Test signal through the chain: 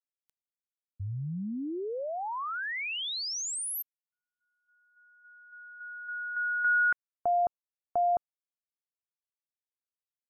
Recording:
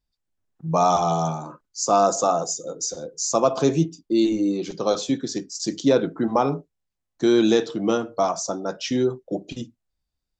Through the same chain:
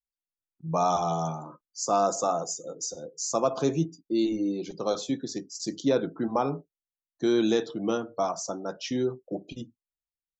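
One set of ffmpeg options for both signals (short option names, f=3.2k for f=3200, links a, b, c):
-af "afftdn=nr=18:nf=-46,volume=-6dB"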